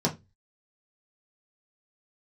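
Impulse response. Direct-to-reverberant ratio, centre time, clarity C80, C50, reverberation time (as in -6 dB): -3.5 dB, 12 ms, 25.0 dB, 16.0 dB, 0.20 s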